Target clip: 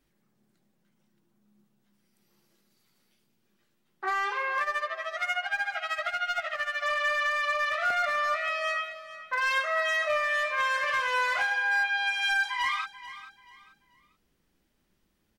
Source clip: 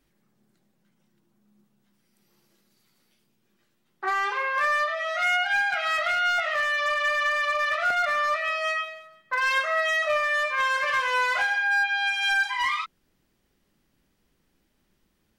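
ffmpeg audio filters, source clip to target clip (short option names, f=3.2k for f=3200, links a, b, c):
-filter_complex "[0:a]asplit=3[a][b][c];[a]afade=t=out:st=4.59:d=0.02[d];[b]tremolo=f=13:d=0.87,afade=t=in:st=4.59:d=0.02,afade=t=out:st=6.82:d=0.02[e];[c]afade=t=in:st=6.82:d=0.02[f];[d][e][f]amix=inputs=3:normalize=0,aecho=1:1:437|874|1311:0.178|0.0533|0.016,volume=-3dB"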